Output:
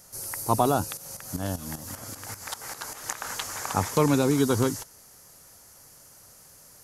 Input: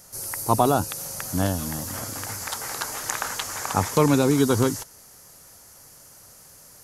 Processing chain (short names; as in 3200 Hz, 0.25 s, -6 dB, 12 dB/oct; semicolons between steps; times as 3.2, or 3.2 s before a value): 0.97–3.29 tremolo saw up 5.1 Hz, depth 75%; gain -3 dB